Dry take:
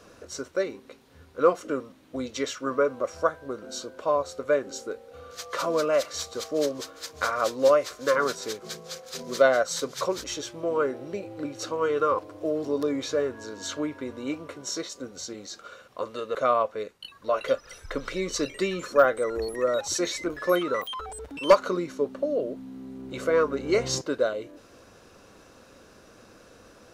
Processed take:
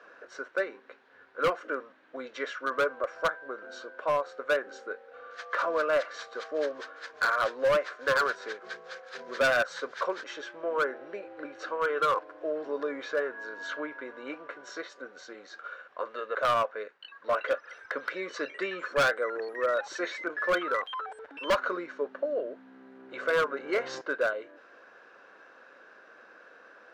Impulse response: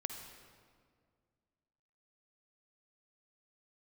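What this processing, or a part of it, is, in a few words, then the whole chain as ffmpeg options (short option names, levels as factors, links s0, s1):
megaphone: -af "highpass=500,lowpass=2500,equalizer=f=1600:t=o:w=0.39:g=11,asoftclip=type=hard:threshold=0.106,volume=0.891"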